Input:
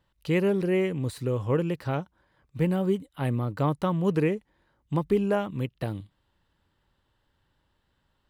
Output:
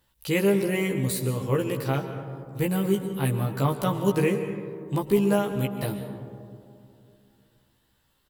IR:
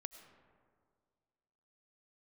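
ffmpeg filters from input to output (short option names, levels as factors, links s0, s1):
-filter_complex "[0:a]aemphasis=mode=production:type=75fm,asplit=2[s0][s1];[s1]adelay=15,volume=0.75[s2];[s0][s2]amix=inputs=2:normalize=0[s3];[1:a]atrim=start_sample=2205,asetrate=31311,aresample=44100[s4];[s3][s4]afir=irnorm=-1:irlink=0,volume=1.33"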